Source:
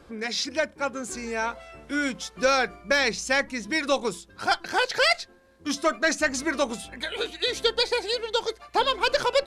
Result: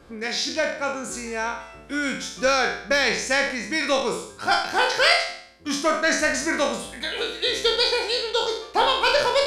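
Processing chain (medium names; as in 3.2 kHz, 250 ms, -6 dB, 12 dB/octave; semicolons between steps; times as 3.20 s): spectral sustain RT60 0.62 s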